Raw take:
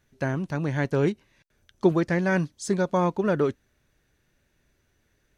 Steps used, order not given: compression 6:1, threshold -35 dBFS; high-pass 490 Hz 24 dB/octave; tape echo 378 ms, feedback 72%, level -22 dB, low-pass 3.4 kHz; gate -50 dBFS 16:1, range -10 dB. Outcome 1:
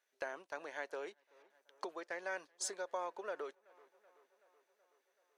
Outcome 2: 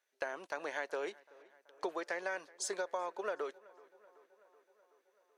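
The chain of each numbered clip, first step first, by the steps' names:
tape echo > compression > high-pass > gate; high-pass > compression > gate > tape echo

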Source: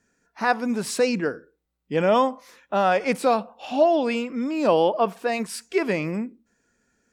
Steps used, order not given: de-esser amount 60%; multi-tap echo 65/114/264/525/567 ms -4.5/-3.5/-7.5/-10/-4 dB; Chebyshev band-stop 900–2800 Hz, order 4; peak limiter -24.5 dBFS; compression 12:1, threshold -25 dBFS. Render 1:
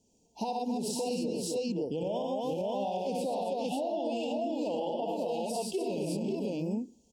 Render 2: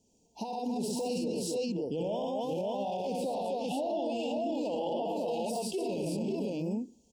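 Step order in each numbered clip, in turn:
multi-tap echo > compression > Chebyshev band-stop > peak limiter > de-esser; multi-tap echo > de-esser > peak limiter > compression > Chebyshev band-stop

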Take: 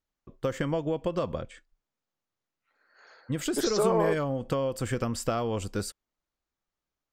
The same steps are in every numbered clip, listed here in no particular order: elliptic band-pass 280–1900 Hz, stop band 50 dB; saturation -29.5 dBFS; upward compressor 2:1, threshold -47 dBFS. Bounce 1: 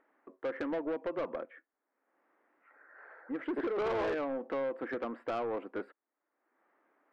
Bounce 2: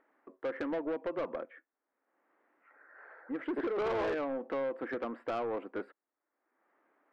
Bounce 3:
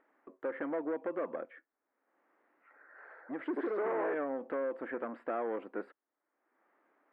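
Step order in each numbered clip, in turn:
elliptic band-pass > saturation > upward compressor; elliptic band-pass > upward compressor > saturation; saturation > elliptic band-pass > upward compressor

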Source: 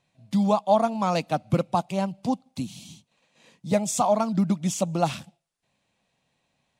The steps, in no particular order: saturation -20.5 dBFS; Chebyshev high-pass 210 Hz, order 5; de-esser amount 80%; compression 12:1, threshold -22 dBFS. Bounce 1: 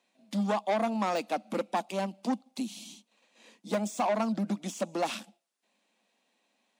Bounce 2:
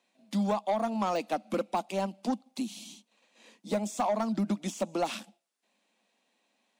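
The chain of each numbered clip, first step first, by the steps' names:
saturation > Chebyshev high-pass > compression > de-esser; de-esser > Chebyshev high-pass > compression > saturation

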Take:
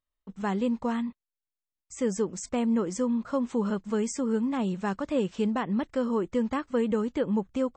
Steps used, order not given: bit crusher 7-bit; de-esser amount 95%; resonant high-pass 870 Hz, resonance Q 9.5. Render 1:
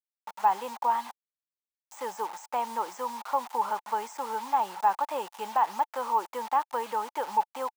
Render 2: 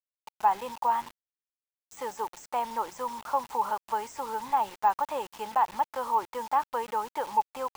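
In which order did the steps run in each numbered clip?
bit crusher > resonant high-pass > de-esser; resonant high-pass > bit crusher > de-esser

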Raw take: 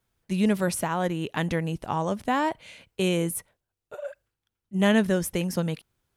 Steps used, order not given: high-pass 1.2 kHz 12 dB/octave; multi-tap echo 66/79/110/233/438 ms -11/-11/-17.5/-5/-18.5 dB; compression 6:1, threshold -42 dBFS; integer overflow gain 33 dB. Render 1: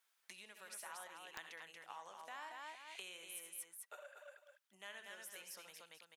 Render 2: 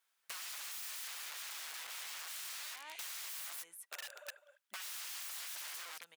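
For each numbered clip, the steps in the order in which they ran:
multi-tap echo > compression > high-pass > integer overflow; multi-tap echo > integer overflow > high-pass > compression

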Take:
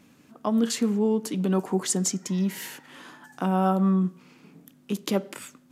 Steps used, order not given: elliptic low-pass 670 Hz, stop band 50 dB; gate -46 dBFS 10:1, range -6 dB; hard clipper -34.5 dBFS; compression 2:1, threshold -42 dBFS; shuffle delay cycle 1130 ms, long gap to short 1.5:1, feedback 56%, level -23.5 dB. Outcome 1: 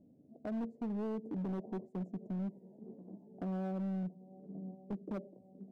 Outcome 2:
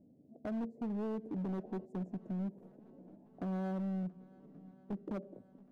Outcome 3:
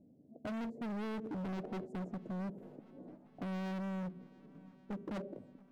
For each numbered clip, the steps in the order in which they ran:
shuffle delay > compression > elliptic low-pass > gate > hard clipper; elliptic low-pass > gate > compression > hard clipper > shuffle delay; gate > elliptic low-pass > hard clipper > compression > shuffle delay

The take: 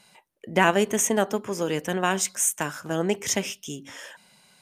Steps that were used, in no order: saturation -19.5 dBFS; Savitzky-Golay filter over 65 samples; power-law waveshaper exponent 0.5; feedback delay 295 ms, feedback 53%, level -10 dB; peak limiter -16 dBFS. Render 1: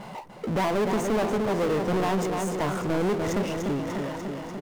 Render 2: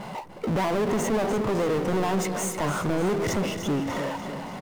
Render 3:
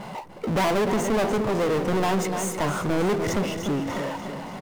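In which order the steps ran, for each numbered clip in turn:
Savitzky-Golay filter > peak limiter > feedback delay > power-law waveshaper > saturation; Savitzky-Golay filter > power-law waveshaper > peak limiter > feedback delay > saturation; Savitzky-Golay filter > power-law waveshaper > feedback delay > saturation > peak limiter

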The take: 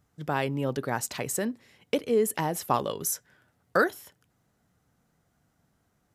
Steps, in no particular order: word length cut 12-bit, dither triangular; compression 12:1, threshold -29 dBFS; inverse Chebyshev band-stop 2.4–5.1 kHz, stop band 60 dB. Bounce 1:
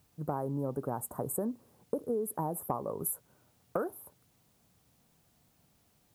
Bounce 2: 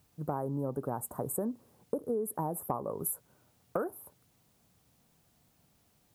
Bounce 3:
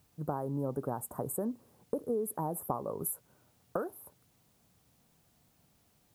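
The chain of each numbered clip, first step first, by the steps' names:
inverse Chebyshev band-stop > compression > word length cut; inverse Chebyshev band-stop > word length cut > compression; compression > inverse Chebyshev band-stop > word length cut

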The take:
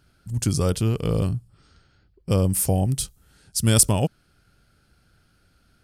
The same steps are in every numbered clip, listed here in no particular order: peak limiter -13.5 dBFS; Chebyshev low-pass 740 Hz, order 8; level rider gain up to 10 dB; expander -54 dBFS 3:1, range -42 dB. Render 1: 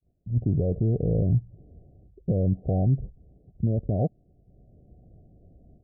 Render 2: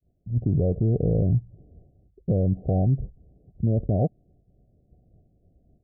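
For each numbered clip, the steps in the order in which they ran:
level rider > peak limiter > Chebyshev low-pass > expander; expander > level rider > Chebyshev low-pass > peak limiter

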